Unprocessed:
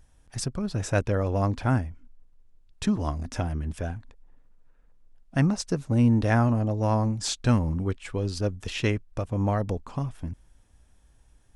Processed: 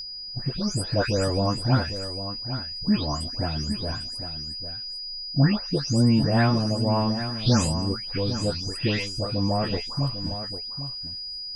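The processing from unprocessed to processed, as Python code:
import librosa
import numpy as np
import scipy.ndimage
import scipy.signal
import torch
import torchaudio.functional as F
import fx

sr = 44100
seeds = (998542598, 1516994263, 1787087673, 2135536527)

p1 = fx.spec_delay(x, sr, highs='late', ms=383)
p2 = p1 + 10.0 ** (-33.0 / 20.0) * np.sin(2.0 * np.pi * 4900.0 * np.arange(len(p1)) / sr)
p3 = fx.doubler(p2, sr, ms=14.0, db=-9.5)
p4 = p3 + fx.echo_single(p3, sr, ms=801, db=-10.5, dry=0)
y = p4 * librosa.db_to_amplitude(2.0)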